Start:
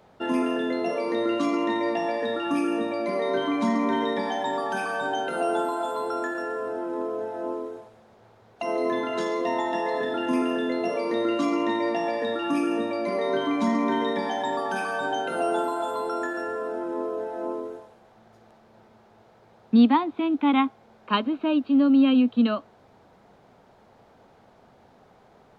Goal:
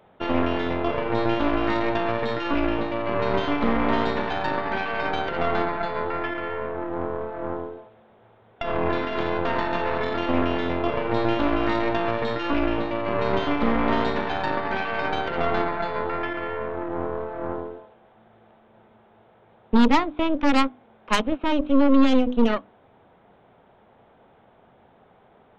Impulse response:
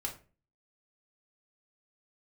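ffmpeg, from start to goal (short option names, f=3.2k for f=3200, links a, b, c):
-af "aresample=8000,aresample=44100,bandreject=f=50:t=h:w=6,bandreject=f=100:t=h:w=6,bandreject=f=150:t=h:w=6,bandreject=f=200:t=h:w=6,bandreject=f=250:t=h:w=6,bandreject=f=300:t=h:w=6,aeval=exprs='0.355*(cos(1*acos(clip(val(0)/0.355,-1,1)))-cos(1*PI/2))+0.0891*(cos(6*acos(clip(val(0)/0.355,-1,1)))-cos(6*PI/2))':c=same"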